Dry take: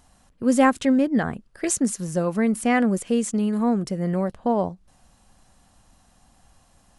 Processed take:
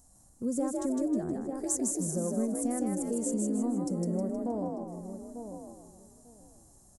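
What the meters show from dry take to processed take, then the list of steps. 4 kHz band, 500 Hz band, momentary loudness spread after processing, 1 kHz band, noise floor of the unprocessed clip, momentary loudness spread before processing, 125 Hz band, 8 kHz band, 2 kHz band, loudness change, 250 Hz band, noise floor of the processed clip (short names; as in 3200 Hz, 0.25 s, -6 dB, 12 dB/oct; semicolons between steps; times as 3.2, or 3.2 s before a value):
under -15 dB, -9.0 dB, 12 LU, -15.5 dB, -59 dBFS, 7 LU, -8.0 dB, -3.5 dB, under -25 dB, -9.5 dB, -8.5 dB, -60 dBFS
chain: in parallel at -6 dB: soft clip -17 dBFS, distortion -12 dB; on the sum: darkening echo 0.894 s, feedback 18%, low-pass 1400 Hz, level -15 dB; compressor 6:1, threshold -22 dBFS, peak gain reduction 11.5 dB; harmonic-percussive split percussive -6 dB; EQ curve 540 Hz 0 dB, 2900 Hz -19 dB, 7000 Hz +9 dB; frequency-shifting echo 0.157 s, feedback 42%, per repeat +50 Hz, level -3 dB; gain -7 dB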